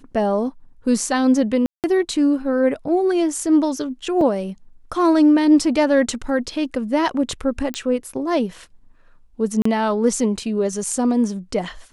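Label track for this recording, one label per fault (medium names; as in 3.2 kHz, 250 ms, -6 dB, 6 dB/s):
1.660000	1.840000	dropout 178 ms
4.210000	4.210000	dropout 3 ms
7.740000	7.740000	pop -11 dBFS
9.620000	9.650000	dropout 34 ms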